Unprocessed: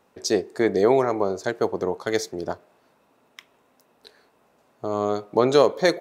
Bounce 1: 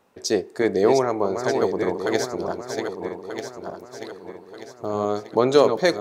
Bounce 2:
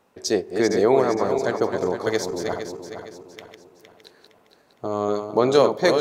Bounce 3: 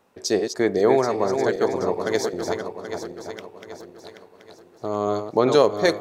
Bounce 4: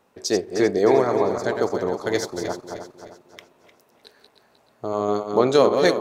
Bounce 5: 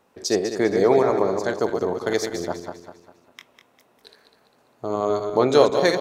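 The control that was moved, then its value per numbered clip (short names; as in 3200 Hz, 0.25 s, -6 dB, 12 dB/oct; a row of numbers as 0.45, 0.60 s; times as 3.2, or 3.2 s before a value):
regenerating reverse delay, time: 0.618, 0.231, 0.39, 0.154, 0.1 s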